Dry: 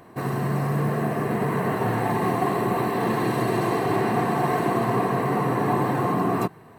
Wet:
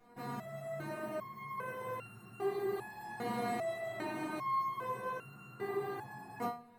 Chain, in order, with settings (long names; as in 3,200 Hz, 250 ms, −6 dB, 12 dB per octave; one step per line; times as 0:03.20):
flanger 1.8 Hz, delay 9.1 ms, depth 3.6 ms, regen −46%
convolution reverb RT60 0.25 s, pre-delay 5 ms, DRR 0 dB
step-sequenced resonator 2.5 Hz 240–1,400 Hz
level +3 dB